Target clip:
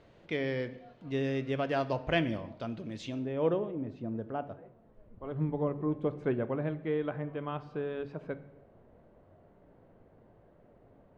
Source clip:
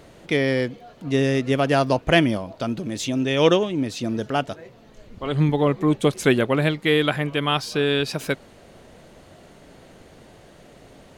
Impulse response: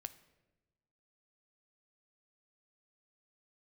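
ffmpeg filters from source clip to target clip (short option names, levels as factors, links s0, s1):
-filter_complex "[0:a]asetnsamples=n=441:p=0,asendcmd='3.19 lowpass f 1100',lowpass=3800[s0];[1:a]atrim=start_sample=2205,afade=t=out:st=0.38:d=0.01,atrim=end_sample=17199[s1];[s0][s1]afir=irnorm=-1:irlink=0,volume=0.422"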